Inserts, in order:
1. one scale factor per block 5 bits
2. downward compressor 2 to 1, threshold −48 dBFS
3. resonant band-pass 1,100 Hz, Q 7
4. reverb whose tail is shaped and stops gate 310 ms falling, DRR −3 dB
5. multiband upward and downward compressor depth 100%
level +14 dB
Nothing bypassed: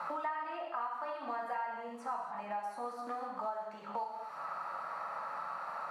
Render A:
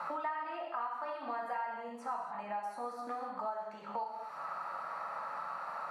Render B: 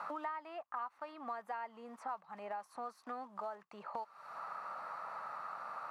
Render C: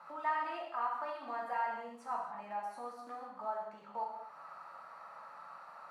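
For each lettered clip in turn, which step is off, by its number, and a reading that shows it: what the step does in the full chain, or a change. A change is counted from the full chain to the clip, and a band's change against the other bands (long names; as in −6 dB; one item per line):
1, distortion level −24 dB
4, change in crest factor +4.0 dB
5, change in crest factor +4.0 dB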